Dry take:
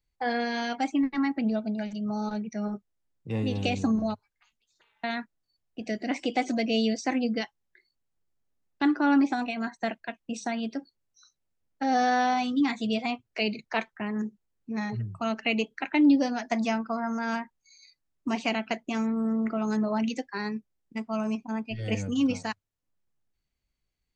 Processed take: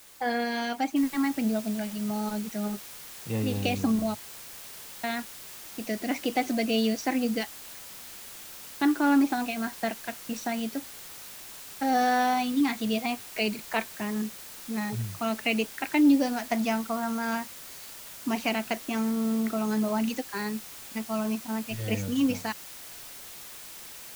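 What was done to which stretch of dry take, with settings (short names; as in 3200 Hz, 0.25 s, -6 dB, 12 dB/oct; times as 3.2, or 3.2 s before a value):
0.96 noise floor step -52 dB -44 dB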